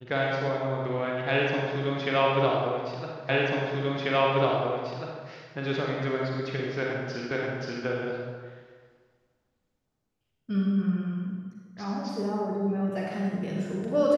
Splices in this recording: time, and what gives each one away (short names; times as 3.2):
3.29 repeat of the last 1.99 s
7.31 repeat of the last 0.53 s